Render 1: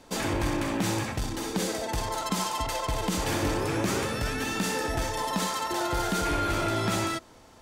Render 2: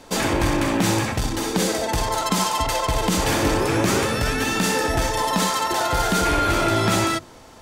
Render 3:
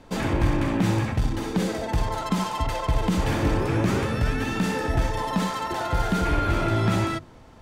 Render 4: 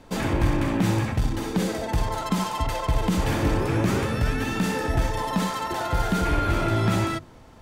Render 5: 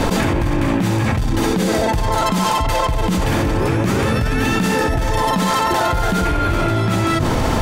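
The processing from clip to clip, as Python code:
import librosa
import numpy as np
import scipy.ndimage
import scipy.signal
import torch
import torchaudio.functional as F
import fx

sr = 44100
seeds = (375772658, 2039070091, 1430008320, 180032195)

y1 = fx.hum_notches(x, sr, base_hz=50, count=7)
y1 = y1 * librosa.db_to_amplitude(8.0)
y2 = fx.bass_treble(y1, sr, bass_db=8, treble_db=-9)
y2 = y2 * librosa.db_to_amplitude(-6.0)
y3 = fx.high_shelf(y2, sr, hz=10000.0, db=6.5)
y4 = fx.env_flatten(y3, sr, amount_pct=100)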